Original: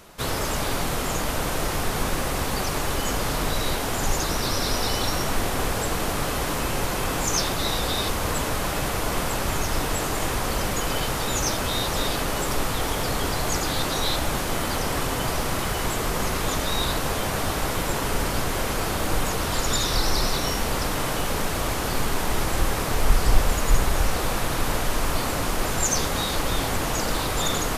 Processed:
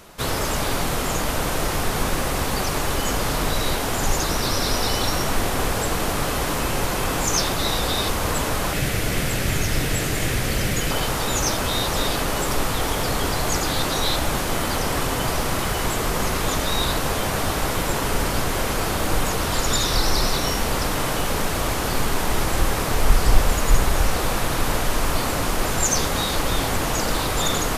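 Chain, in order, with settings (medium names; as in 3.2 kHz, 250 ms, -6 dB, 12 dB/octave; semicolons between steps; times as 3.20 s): 8.73–10.91 s: graphic EQ 125/1000/2000 Hz +6/-10/+5 dB; trim +2.5 dB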